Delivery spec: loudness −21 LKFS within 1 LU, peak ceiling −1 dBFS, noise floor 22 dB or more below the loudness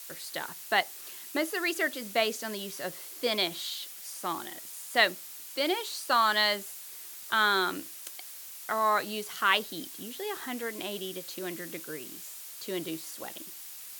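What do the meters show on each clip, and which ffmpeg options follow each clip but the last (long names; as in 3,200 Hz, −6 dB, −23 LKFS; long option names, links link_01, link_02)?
background noise floor −45 dBFS; target noise floor −53 dBFS; integrated loudness −30.5 LKFS; sample peak −8.5 dBFS; target loudness −21.0 LKFS
→ -af "afftdn=noise_reduction=8:noise_floor=-45"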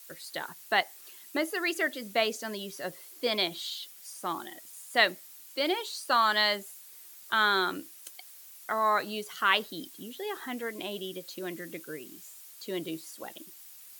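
background noise floor −51 dBFS; target noise floor −53 dBFS
→ -af "afftdn=noise_reduction=6:noise_floor=-51"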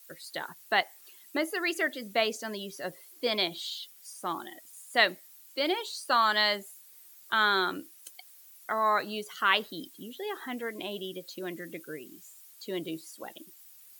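background noise floor −55 dBFS; integrated loudness −30.5 LKFS; sample peak −8.5 dBFS; target loudness −21.0 LKFS
→ -af "volume=9.5dB,alimiter=limit=-1dB:level=0:latency=1"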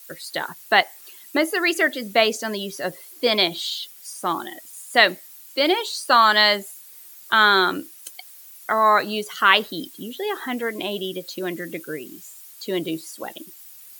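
integrated loudness −21.0 LKFS; sample peak −1.0 dBFS; background noise floor −45 dBFS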